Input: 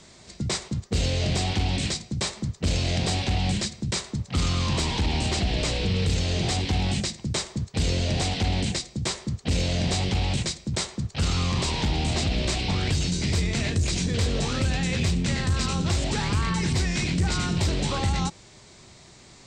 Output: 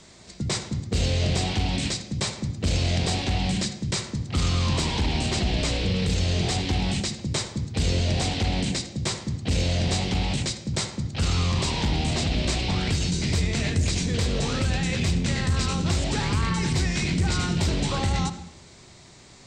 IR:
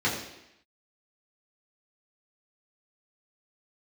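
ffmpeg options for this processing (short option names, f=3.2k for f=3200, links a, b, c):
-filter_complex "[0:a]asplit=2[a][b];[1:a]atrim=start_sample=2205,adelay=66[c];[b][c]afir=irnorm=-1:irlink=0,volume=-22.5dB[d];[a][d]amix=inputs=2:normalize=0"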